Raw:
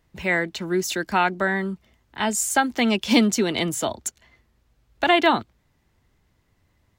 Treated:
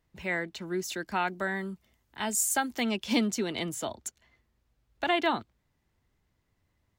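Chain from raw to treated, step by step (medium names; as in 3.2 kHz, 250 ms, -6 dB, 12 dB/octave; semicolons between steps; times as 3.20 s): 1.27–2.84 s: treble shelf 7.3 kHz +11 dB; trim -9 dB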